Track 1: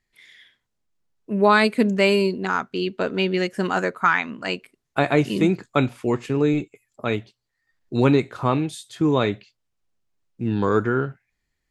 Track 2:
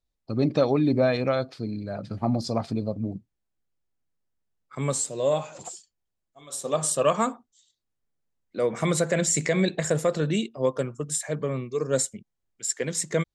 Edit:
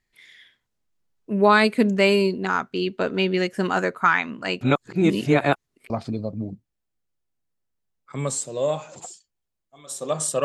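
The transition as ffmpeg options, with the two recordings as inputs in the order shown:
-filter_complex "[0:a]apad=whole_dur=10.44,atrim=end=10.44,asplit=2[a][b];[a]atrim=end=4.612[c];[b]atrim=start=4.608:end=5.902,asetpts=PTS-STARTPTS,areverse[d];[1:a]atrim=start=2.528:end=7.07[e];[c][d]acrossfade=d=0.004:c1=hsin:c2=hsin[f];[f][e]acrossfade=d=0.004:c1=hsin:c2=hsin"

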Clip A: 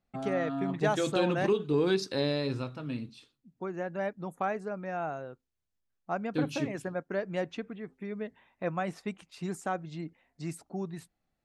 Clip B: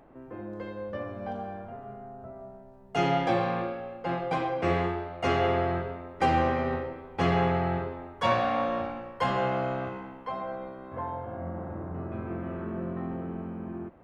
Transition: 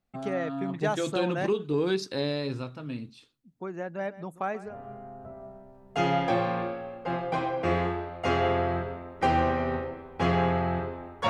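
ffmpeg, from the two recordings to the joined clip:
-filter_complex "[0:a]asettb=1/sr,asplit=3[a][b][c];[a]atrim=end=3.854[d];[b]atrim=start=3.85:end=4.78,asetpts=PTS-STARTPTS,afade=t=in:d=0.004:c=qsin,afade=t=out:st=0.926:d=0.004:c=qsin,aecho=1:1:133:0.15,atrim=end_sample=41013[e];[c]atrim=start=4.776[f];[d][e]acrossfade=d=0.004:c1=hsin:c2=qsin[g];[g][f]acrossfade=d=0.004:c1=qsin:c2=hsin,apad=whole_dur=11.29,atrim=end=11.29,atrim=end=4.78,asetpts=PTS-STARTPTS[h];[1:a]atrim=start=1.61:end=8.28,asetpts=PTS-STARTPTS[i];[h][i]acrossfade=d=0.16:c1=tri:c2=tri"

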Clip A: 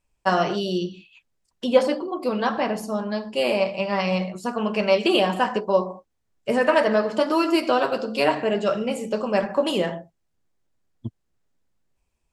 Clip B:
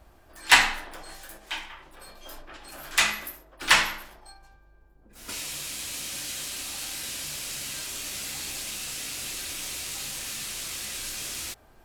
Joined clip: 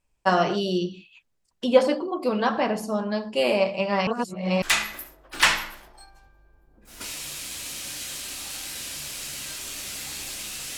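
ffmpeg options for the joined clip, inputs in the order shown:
-filter_complex "[0:a]apad=whole_dur=10.77,atrim=end=10.77,asplit=2[a][b];[a]atrim=end=4.072[c];[b]atrim=start=4.068:end=4.622,asetpts=PTS-STARTPTS,areverse[d];[1:a]atrim=start=2.898:end=9.05[e];[c][d]acrossfade=d=0.004:c1=hsin:c2=hsin[f];[f][e]acrossfade=d=0.004:c1=hsin:c2=hsin"

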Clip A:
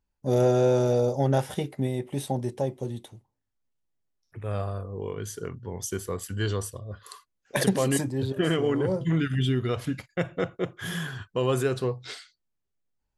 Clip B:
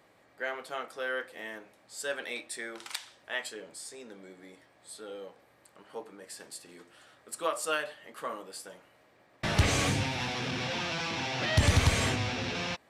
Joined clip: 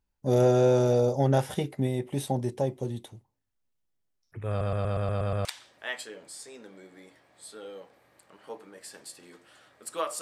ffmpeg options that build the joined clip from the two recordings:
-filter_complex "[0:a]apad=whole_dur=10.21,atrim=end=10.21,asplit=8[a][b][c][d][e][f][g][h];[a]atrim=end=4.612[i];[b]atrim=start=4.488:end=4.612[j];[c]atrim=start=4.488:end=4.612[k];[d]atrim=start=4.488:end=4.612[l];[e]atrim=start=4.488:end=4.612[m];[f]atrim=start=4.488:end=4.612[n];[g]atrim=start=4.488:end=4.612[o];[h]atrim=start=4.488:end=4.612[p];[1:a]atrim=start=2.908:end=7.67[q];[i][j]acrossfade=d=0.004:c1=hsin:c2=hsin[r];[r][k]acrossfade=d=0.004:c1=hsin:c2=hsin[s];[s][l]acrossfade=d=0.004:c1=hsin:c2=hsin[t];[t][m]acrossfade=d=0.004:c1=hsin:c2=hsin[u];[u][n]acrossfade=d=0.004:c1=hsin:c2=hsin[v];[v][o]acrossfade=d=0.004:c1=hsin:c2=hsin[w];[w][p]acrossfade=d=0.004:c1=hsin:c2=hsin[x];[x][q]acrossfade=d=0.004:c1=hsin:c2=hsin"

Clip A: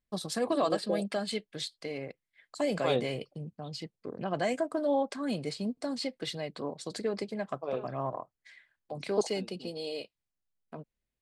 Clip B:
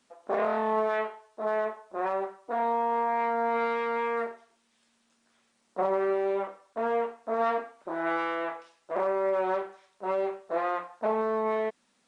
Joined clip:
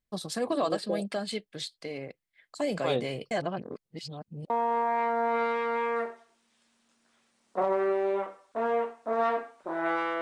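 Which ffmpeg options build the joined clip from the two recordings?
-filter_complex "[0:a]apad=whole_dur=10.21,atrim=end=10.21,asplit=2[a][b];[a]atrim=end=3.312[c];[b]atrim=start=3.308:end=4.502,asetpts=PTS-STARTPTS,areverse[d];[1:a]atrim=start=2.708:end=8.42[e];[c][d]acrossfade=d=0.004:c1=hsin:c2=hsin[f];[f][e]acrossfade=d=0.004:c1=hsin:c2=hsin"

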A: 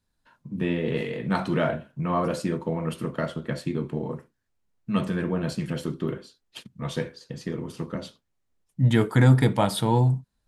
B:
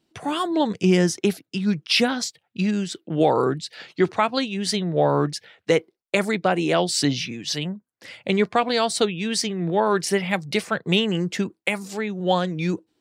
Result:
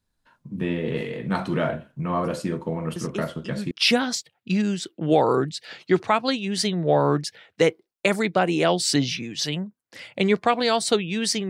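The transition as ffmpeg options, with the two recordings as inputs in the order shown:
-filter_complex "[1:a]asplit=2[a][b];[0:a]apad=whole_dur=11.49,atrim=end=11.49,atrim=end=3.712[c];[b]atrim=start=1.798:end=9.58[d];[a]atrim=start=1.05:end=1.8,asetpts=PTS-STARTPTS,volume=-10.5dB,afade=t=in:d=0.004:c=hsin,afade=t=out:st=0.746:d=0.004:c=hsin,adelay=2960[e];[c][d]acrossfade=d=0.004:c1=hsin:c2=hsin[f];[f][e]amix=inputs=2:normalize=0"

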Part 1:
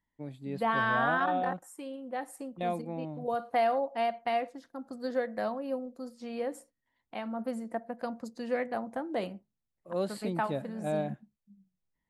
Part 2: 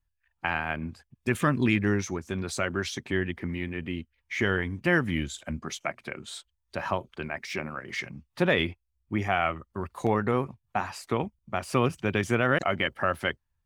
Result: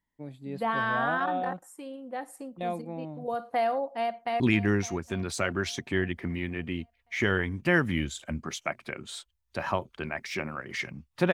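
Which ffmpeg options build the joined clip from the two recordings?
-filter_complex "[0:a]apad=whole_dur=11.33,atrim=end=11.33,atrim=end=4.402[a];[1:a]atrim=start=1.588:end=8.52[b];[a][b]acrossfade=d=0.004:c1=hsin:c2=hsin,asplit=2[c][d];[d]afade=t=in:st=3.92:d=0.01,afade=t=out:st=4.4:d=0.01,aecho=0:1:560|1120|1680|2240|2800:0.16788|0.0839402|0.0419701|0.0209851|0.0104925[e];[c][e]amix=inputs=2:normalize=0"

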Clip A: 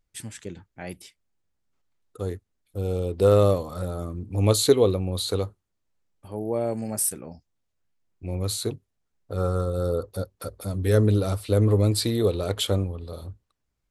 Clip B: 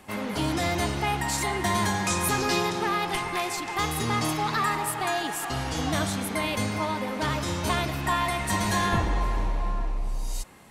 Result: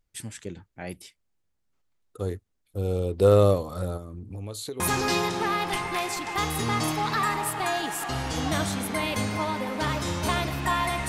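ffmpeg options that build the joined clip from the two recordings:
-filter_complex "[0:a]asettb=1/sr,asplit=3[a][b][c];[a]atrim=end=3.974[d];[b]atrim=start=3.97:end=4.8,asetpts=PTS-STARTPTS,afade=t=in:d=0.004:c=qsin,afade=t=out:st=0.826:d=0.004:c=qsin,acompressor=threshold=-35dB:ratio=4:attack=3.2:release=140:knee=1:detection=peak[e];[c]atrim=start=4.796[f];[d][e]acrossfade=d=0.004:c1=hsin:c2=qsin[g];[g][f]acrossfade=d=0.004:c1=qsin:c2=hsin,apad=whole_dur=11.08,atrim=end=11.08,atrim=end=4.802[h];[1:a]atrim=start=2.208:end=8.49[i];[h][i]acrossfade=d=0.004:c1=hsin:c2=hsin"

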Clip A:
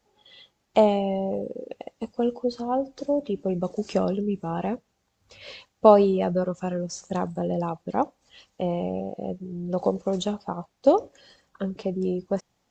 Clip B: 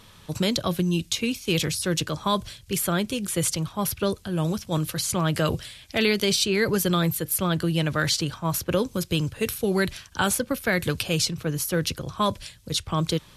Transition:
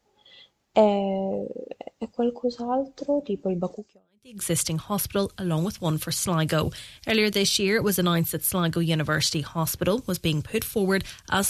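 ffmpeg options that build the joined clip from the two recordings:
-filter_complex "[0:a]apad=whole_dur=11.49,atrim=end=11.49,atrim=end=4.43,asetpts=PTS-STARTPTS[a];[1:a]atrim=start=2.6:end=10.36,asetpts=PTS-STARTPTS[b];[a][b]acrossfade=d=0.7:c1=exp:c2=exp"

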